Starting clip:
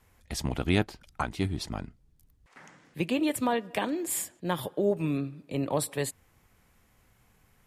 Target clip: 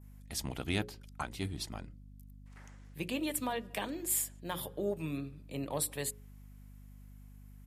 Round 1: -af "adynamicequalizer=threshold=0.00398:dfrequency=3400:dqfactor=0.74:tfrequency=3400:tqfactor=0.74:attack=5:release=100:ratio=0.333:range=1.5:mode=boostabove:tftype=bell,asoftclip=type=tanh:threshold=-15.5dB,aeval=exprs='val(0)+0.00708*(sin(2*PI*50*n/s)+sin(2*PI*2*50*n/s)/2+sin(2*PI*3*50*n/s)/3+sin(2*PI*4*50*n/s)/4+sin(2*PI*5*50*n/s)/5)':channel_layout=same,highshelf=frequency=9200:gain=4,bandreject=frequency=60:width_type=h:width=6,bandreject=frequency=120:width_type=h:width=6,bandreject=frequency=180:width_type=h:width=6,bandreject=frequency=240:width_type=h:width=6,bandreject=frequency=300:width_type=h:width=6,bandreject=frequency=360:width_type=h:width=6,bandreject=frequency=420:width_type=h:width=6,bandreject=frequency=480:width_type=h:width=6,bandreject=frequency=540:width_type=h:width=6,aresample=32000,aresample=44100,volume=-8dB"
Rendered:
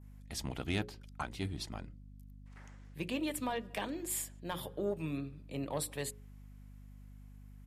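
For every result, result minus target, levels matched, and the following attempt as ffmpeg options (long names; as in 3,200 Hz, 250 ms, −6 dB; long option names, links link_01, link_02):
soft clipping: distortion +10 dB; 8,000 Hz band −3.0 dB
-af "adynamicequalizer=threshold=0.00398:dfrequency=3400:dqfactor=0.74:tfrequency=3400:tqfactor=0.74:attack=5:release=100:ratio=0.333:range=1.5:mode=boostabove:tftype=bell,asoftclip=type=tanh:threshold=-9.5dB,aeval=exprs='val(0)+0.00708*(sin(2*PI*50*n/s)+sin(2*PI*2*50*n/s)/2+sin(2*PI*3*50*n/s)/3+sin(2*PI*4*50*n/s)/4+sin(2*PI*5*50*n/s)/5)':channel_layout=same,highshelf=frequency=9200:gain=4,bandreject=frequency=60:width_type=h:width=6,bandreject=frequency=120:width_type=h:width=6,bandreject=frequency=180:width_type=h:width=6,bandreject=frequency=240:width_type=h:width=6,bandreject=frequency=300:width_type=h:width=6,bandreject=frequency=360:width_type=h:width=6,bandreject=frequency=420:width_type=h:width=6,bandreject=frequency=480:width_type=h:width=6,bandreject=frequency=540:width_type=h:width=6,aresample=32000,aresample=44100,volume=-8dB"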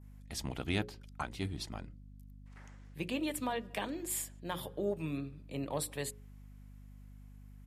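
8,000 Hz band −3.0 dB
-af "adynamicequalizer=threshold=0.00398:dfrequency=3400:dqfactor=0.74:tfrequency=3400:tqfactor=0.74:attack=5:release=100:ratio=0.333:range=1.5:mode=boostabove:tftype=bell,asoftclip=type=tanh:threshold=-9.5dB,aeval=exprs='val(0)+0.00708*(sin(2*PI*50*n/s)+sin(2*PI*2*50*n/s)/2+sin(2*PI*3*50*n/s)/3+sin(2*PI*4*50*n/s)/4+sin(2*PI*5*50*n/s)/5)':channel_layout=same,highshelf=frequency=9200:gain=14.5,bandreject=frequency=60:width_type=h:width=6,bandreject=frequency=120:width_type=h:width=6,bandreject=frequency=180:width_type=h:width=6,bandreject=frequency=240:width_type=h:width=6,bandreject=frequency=300:width_type=h:width=6,bandreject=frequency=360:width_type=h:width=6,bandreject=frequency=420:width_type=h:width=6,bandreject=frequency=480:width_type=h:width=6,bandreject=frequency=540:width_type=h:width=6,aresample=32000,aresample=44100,volume=-8dB"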